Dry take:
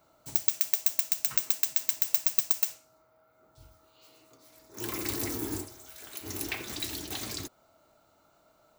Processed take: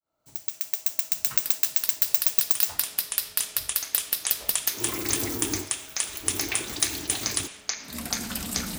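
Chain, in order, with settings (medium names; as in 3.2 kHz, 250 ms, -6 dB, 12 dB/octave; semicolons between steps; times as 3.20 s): fade-in on the opening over 1.29 s; ever faster or slower copies 733 ms, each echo -7 st, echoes 3; trim +3.5 dB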